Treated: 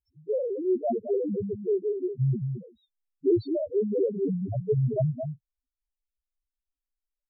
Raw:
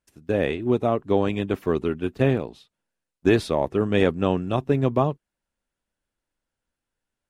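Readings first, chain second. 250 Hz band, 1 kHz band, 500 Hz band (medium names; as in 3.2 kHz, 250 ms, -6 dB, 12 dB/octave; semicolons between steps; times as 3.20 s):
-6.0 dB, under -10 dB, -3.5 dB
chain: echo from a far wall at 37 m, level -7 dB; loudest bins only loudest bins 1; trim +4.5 dB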